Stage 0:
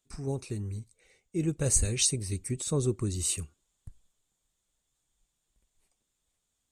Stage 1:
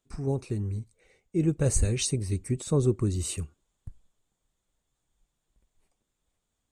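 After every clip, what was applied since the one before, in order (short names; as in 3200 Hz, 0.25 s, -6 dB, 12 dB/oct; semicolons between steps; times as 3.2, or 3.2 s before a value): high shelf 2400 Hz -10 dB; gain +4.5 dB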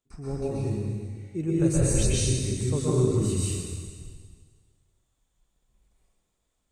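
plate-style reverb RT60 1.7 s, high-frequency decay 1×, pre-delay 0.11 s, DRR -7.5 dB; gain -5.5 dB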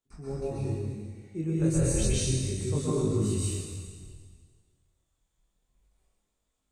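notches 60/120 Hz; chorus 0.3 Hz, delay 19 ms, depth 6.3 ms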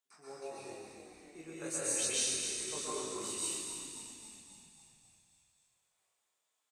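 HPF 810 Hz 12 dB/oct; on a send: frequency-shifting echo 0.27 s, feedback 61%, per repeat -36 Hz, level -8.5 dB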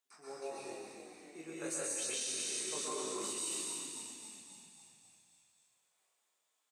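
HPF 180 Hz 12 dB/oct; limiter -30.5 dBFS, peak gain reduction 10.5 dB; gain +1.5 dB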